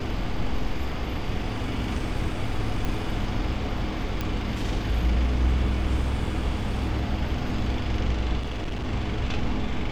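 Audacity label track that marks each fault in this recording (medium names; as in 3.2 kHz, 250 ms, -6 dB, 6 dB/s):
2.850000	2.850000	pop -16 dBFS
4.210000	4.210000	pop -14 dBFS
8.390000	8.870000	clipped -26 dBFS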